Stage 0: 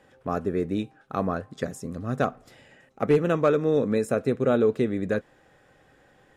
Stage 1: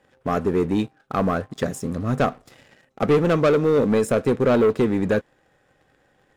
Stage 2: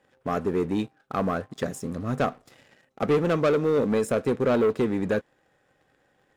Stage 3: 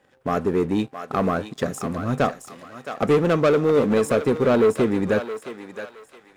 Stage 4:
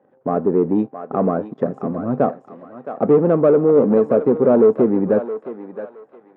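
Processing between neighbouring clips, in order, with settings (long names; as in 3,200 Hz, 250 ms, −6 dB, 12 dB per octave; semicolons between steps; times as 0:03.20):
leveller curve on the samples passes 2
low-shelf EQ 86 Hz −6 dB; level −4 dB
feedback echo with a high-pass in the loop 668 ms, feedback 38%, high-pass 810 Hz, level −7 dB; level +4 dB
flat-topped band-pass 380 Hz, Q 0.54; level +5 dB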